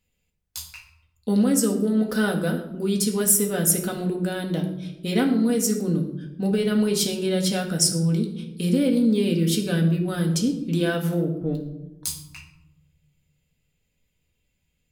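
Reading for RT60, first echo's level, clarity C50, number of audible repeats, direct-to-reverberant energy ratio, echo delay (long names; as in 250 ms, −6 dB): 0.95 s, no echo audible, 8.5 dB, no echo audible, 1.0 dB, no echo audible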